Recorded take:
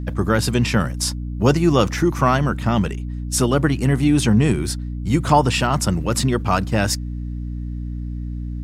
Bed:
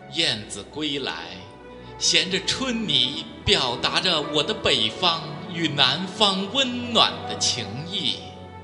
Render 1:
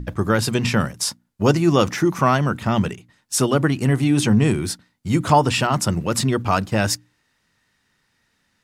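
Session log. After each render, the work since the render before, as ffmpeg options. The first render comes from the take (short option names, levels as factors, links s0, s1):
-af "bandreject=f=60:t=h:w=6,bandreject=f=120:t=h:w=6,bandreject=f=180:t=h:w=6,bandreject=f=240:t=h:w=6,bandreject=f=300:t=h:w=6"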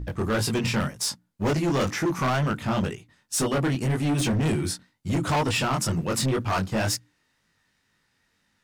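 -af "flanger=delay=18.5:depth=4.8:speed=2,asoftclip=type=hard:threshold=0.0944"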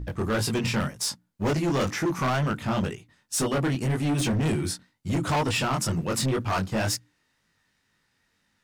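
-af "volume=0.891"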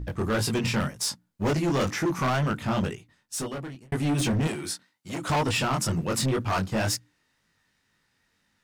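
-filter_complex "[0:a]asettb=1/sr,asplit=3[s0][s1][s2];[s0]atrim=end=4.474[s3];[s1]atrim=start=4.47:end=5.3,asetpts=PTS-STARTPTS,afade=t=in:d=0.004:c=qsin,afade=t=out:st=0.826:d=0.004:c=qsin,highpass=f=540:p=1[s4];[s2]atrim=start=5.296[s5];[s3][s4]acrossfade=d=0.004:c1=hsin:c2=qsin[s6];[s6][s5]acrossfade=d=0.004:c1=qsin:c2=hsin,asplit=2[s7][s8];[s7]atrim=end=3.92,asetpts=PTS-STARTPTS,afade=t=out:st=2.91:d=1.01[s9];[s8]atrim=start=3.92,asetpts=PTS-STARTPTS,afade=t=in:d=0.004:c=hsin[s10];[s9][s10]concat=n=2:v=0:a=1"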